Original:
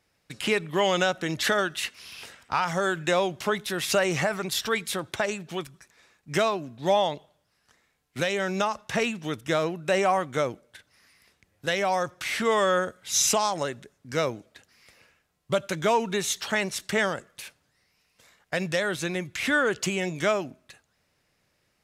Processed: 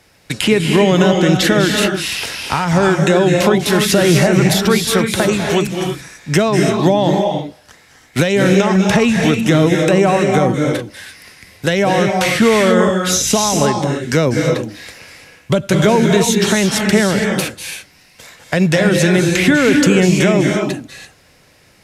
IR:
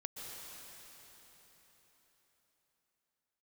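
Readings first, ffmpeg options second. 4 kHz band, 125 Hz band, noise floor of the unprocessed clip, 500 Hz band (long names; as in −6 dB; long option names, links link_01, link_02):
+11.5 dB, +20.5 dB, −72 dBFS, +12.5 dB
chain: -filter_complex "[0:a]bandreject=frequency=1200:width=16,acrossover=split=350[link_01][link_02];[link_02]acompressor=threshold=-36dB:ratio=5[link_03];[link_01][link_03]amix=inputs=2:normalize=0[link_04];[1:a]atrim=start_sample=2205,afade=type=out:start_time=0.26:duration=0.01,atrim=end_sample=11907,asetrate=26901,aresample=44100[link_05];[link_04][link_05]afir=irnorm=-1:irlink=0,alimiter=level_in=22.5dB:limit=-1dB:release=50:level=0:latency=1,volume=-1dB"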